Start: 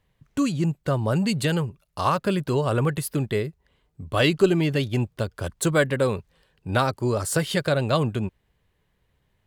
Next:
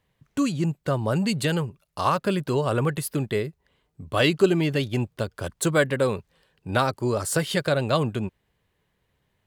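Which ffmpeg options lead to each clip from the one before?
-af "lowshelf=f=64:g=-10.5"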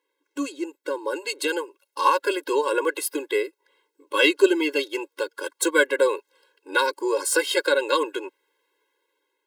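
-filter_complex "[0:a]acrossover=split=510[s0][s1];[s1]dynaudnorm=f=580:g=5:m=2.99[s2];[s0][s2]amix=inputs=2:normalize=0,afftfilt=real='re*eq(mod(floor(b*sr/1024/280),2),1)':imag='im*eq(mod(floor(b*sr/1024/280),2),1)':win_size=1024:overlap=0.75"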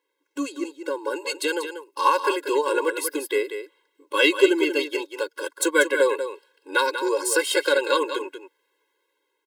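-af "aecho=1:1:189:0.355"

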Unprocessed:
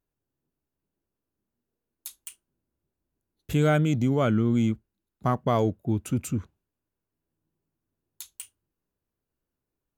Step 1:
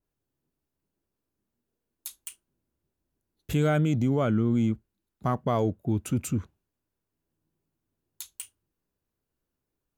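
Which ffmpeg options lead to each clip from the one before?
-filter_complex "[0:a]asplit=2[s0][s1];[s1]alimiter=limit=0.106:level=0:latency=1:release=35,volume=1.26[s2];[s0][s2]amix=inputs=2:normalize=0,adynamicequalizer=threshold=0.0224:dfrequency=1600:dqfactor=0.7:tfrequency=1600:tqfactor=0.7:attack=5:release=100:ratio=0.375:range=2.5:mode=cutabove:tftype=highshelf,volume=0.501"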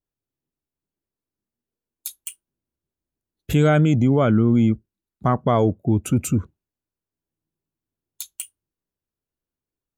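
-af "afftdn=nr=14:nf=-50,volume=2.37"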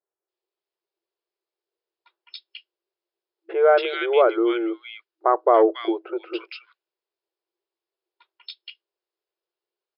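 -filter_complex "[0:a]acrossover=split=1700[s0][s1];[s1]adelay=280[s2];[s0][s2]amix=inputs=2:normalize=0,afftfilt=real='re*between(b*sr/4096,330,5300)':imag='im*between(b*sr/4096,330,5300)':win_size=4096:overlap=0.75,volume=1.68"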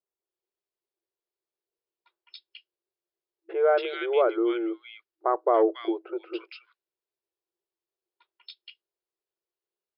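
-af "lowshelf=f=300:g=7,volume=0.447"

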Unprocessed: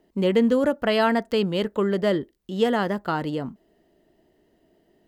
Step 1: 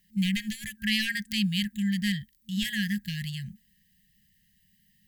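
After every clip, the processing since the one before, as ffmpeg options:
-af "aemphasis=mode=production:type=50kf,aeval=exprs='clip(val(0),-1,0.158)':c=same,afftfilt=real='re*(1-between(b*sr/4096,220,1600))':imag='im*(1-between(b*sr/4096,220,1600))':win_size=4096:overlap=0.75"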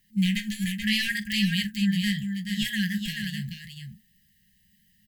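-af "flanger=delay=8.1:depth=8.4:regen=-34:speed=0.77:shape=sinusoidal,aecho=1:1:43|431:0.158|0.501,volume=1.78"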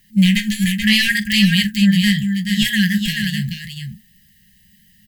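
-af "acontrast=84,volume=1.58"

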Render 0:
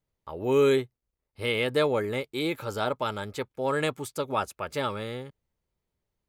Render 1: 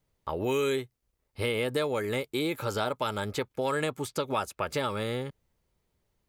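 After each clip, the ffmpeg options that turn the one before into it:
-filter_complex "[0:a]acrossover=split=1500|5900[s0][s1][s2];[s0]acompressor=threshold=0.0158:ratio=4[s3];[s1]acompressor=threshold=0.00631:ratio=4[s4];[s2]acompressor=threshold=0.00251:ratio=4[s5];[s3][s4][s5]amix=inputs=3:normalize=0,volume=2.24"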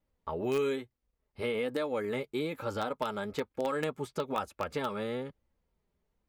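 -filter_complex "[0:a]highshelf=f=3500:g=-11,flanger=delay=3.4:depth=1.7:regen=-34:speed=1.1:shape=triangular,asplit=2[s0][s1];[s1]acrusher=bits=3:mix=0:aa=0.000001,volume=0.282[s2];[s0][s2]amix=inputs=2:normalize=0,volume=1.12"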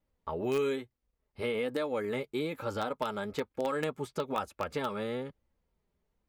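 -af anull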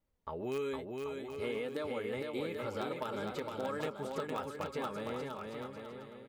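-filter_complex "[0:a]asplit=2[s0][s1];[s1]acompressor=threshold=0.01:ratio=6,volume=0.944[s2];[s0][s2]amix=inputs=2:normalize=0,aecho=1:1:460|782|1007|1165|1276:0.631|0.398|0.251|0.158|0.1,volume=0.376"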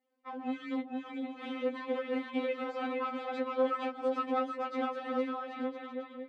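-af "aeval=exprs='clip(val(0),-1,0.0141)':c=same,highpass=210,lowpass=2800,afftfilt=real='re*3.46*eq(mod(b,12),0)':imag='im*3.46*eq(mod(b,12),0)':win_size=2048:overlap=0.75,volume=2.51"

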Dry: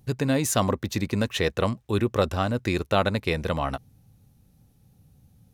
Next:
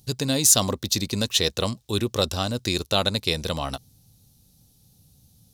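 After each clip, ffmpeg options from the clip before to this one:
-af "highshelf=f=2900:t=q:w=1.5:g=12,volume=0.841"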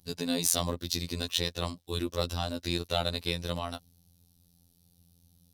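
-af "acontrast=82,equalizer=f=7000:t=o:w=0.45:g=-6.5,afftfilt=real='hypot(re,im)*cos(PI*b)':imag='0':win_size=2048:overlap=0.75,volume=0.316"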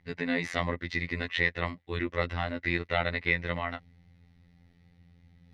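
-af "areverse,acompressor=mode=upward:threshold=0.00447:ratio=2.5,areverse,lowpass=f=2000:t=q:w=12"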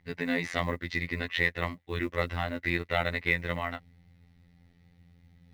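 -af "acrusher=bits=8:mode=log:mix=0:aa=0.000001"

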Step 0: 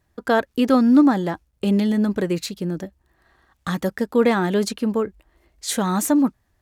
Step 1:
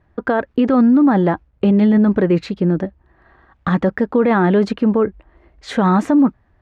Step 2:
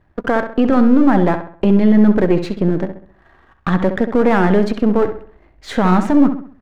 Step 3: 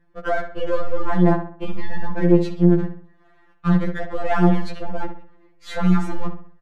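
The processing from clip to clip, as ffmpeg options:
-af "lowpass=1900,alimiter=level_in=5.96:limit=0.891:release=50:level=0:latency=1,volume=0.501"
-filter_complex "[0:a]aeval=exprs='if(lt(val(0),0),0.447*val(0),val(0))':c=same,asplit=2[s0][s1];[s1]adelay=66,lowpass=f=3400:p=1,volume=0.355,asplit=2[s2][s3];[s3]adelay=66,lowpass=f=3400:p=1,volume=0.41,asplit=2[s4][s5];[s5]adelay=66,lowpass=f=3400:p=1,volume=0.41,asplit=2[s6][s7];[s7]adelay=66,lowpass=f=3400:p=1,volume=0.41,asplit=2[s8][s9];[s9]adelay=66,lowpass=f=3400:p=1,volume=0.41[s10];[s0][s2][s4][s6][s8][s10]amix=inputs=6:normalize=0,volume=1.33"
-af "aresample=32000,aresample=44100,afftfilt=real='re*2.83*eq(mod(b,8),0)':imag='im*2.83*eq(mod(b,8),0)':win_size=2048:overlap=0.75,volume=0.668"

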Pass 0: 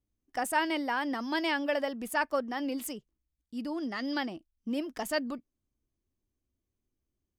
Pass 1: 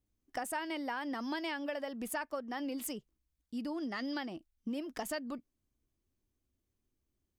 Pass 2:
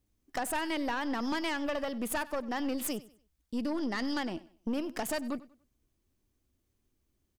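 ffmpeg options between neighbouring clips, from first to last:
-af "acompressor=threshold=0.0158:ratio=6,volume=1.12"
-af "aeval=exprs='0.0668*(cos(1*acos(clip(val(0)/0.0668,-1,1)))-cos(1*PI/2))+0.0335*(cos(4*acos(clip(val(0)/0.0668,-1,1)))-cos(4*PI/2))+0.0133*(cos(5*acos(clip(val(0)/0.0668,-1,1)))-cos(5*PI/2))+0.0237*(cos(6*acos(clip(val(0)/0.0668,-1,1)))-cos(6*PI/2))+0.0119*(cos(8*acos(clip(val(0)/0.0668,-1,1)))-cos(8*PI/2))':c=same,aecho=1:1:96|192|288:0.112|0.0348|0.0108"

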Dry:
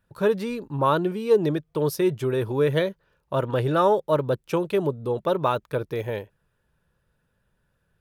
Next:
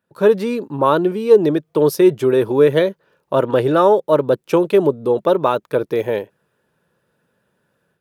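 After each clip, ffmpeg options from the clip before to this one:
-af "highpass=310,dynaudnorm=f=110:g=3:m=2.99,lowshelf=f=410:g=11.5,volume=0.668"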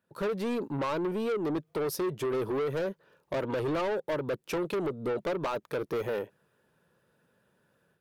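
-af "acompressor=threshold=0.141:ratio=4,asoftclip=type=tanh:threshold=0.0668,volume=0.668"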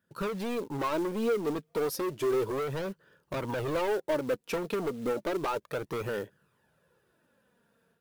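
-af "flanger=delay=0.6:depth=3.8:regen=31:speed=0.32:shape=sinusoidal,acrusher=bits=5:mode=log:mix=0:aa=0.000001,volume=1.58"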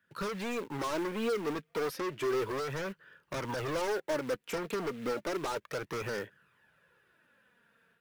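-filter_complex "[0:a]acrossover=split=110|1700|2400[s0][s1][s2][s3];[s2]aeval=exprs='0.0141*sin(PI/2*5.01*val(0)/0.0141)':c=same[s4];[s3]alimiter=level_in=3.16:limit=0.0631:level=0:latency=1:release=477,volume=0.316[s5];[s0][s1][s4][s5]amix=inputs=4:normalize=0,volume=0.668"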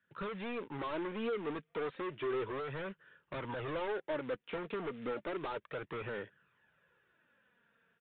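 -af "aresample=8000,aresample=44100,volume=0.596"

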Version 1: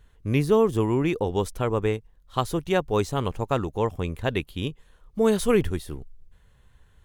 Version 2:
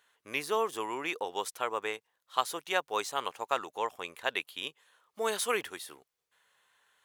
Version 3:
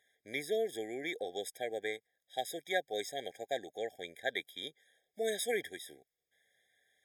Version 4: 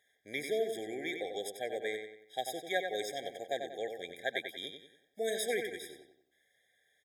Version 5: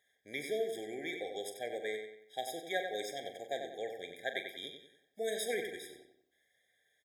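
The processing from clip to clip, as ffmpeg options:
-af "highpass=860"
-af "afftfilt=real='re*eq(mod(floor(b*sr/1024/790),2),0)':imag='im*eq(mod(floor(b*sr/1024/790),2),0)':win_size=1024:overlap=0.75,volume=0.841"
-filter_complex "[0:a]asplit=2[s0][s1];[s1]adelay=93,lowpass=f=4400:p=1,volume=0.501,asplit=2[s2][s3];[s3]adelay=93,lowpass=f=4400:p=1,volume=0.43,asplit=2[s4][s5];[s5]adelay=93,lowpass=f=4400:p=1,volume=0.43,asplit=2[s6][s7];[s7]adelay=93,lowpass=f=4400:p=1,volume=0.43,asplit=2[s8][s9];[s9]adelay=93,lowpass=f=4400:p=1,volume=0.43[s10];[s0][s2][s4][s6][s8][s10]amix=inputs=6:normalize=0"
-filter_complex "[0:a]asplit=2[s0][s1];[s1]adelay=42,volume=0.299[s2];[s0][s2]amix=inputs=2:normalize=0,volume=0.75"

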